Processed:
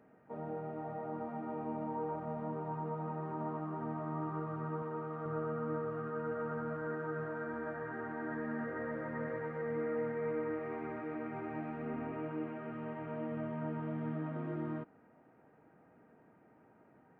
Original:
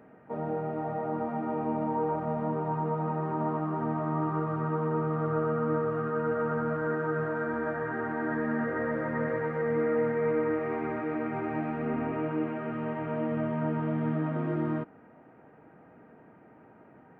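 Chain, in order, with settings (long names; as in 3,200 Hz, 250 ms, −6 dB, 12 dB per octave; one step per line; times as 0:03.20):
0:04.82–0:05.26: low-shelf EQ 220 Hz −9 dB
level −9 dB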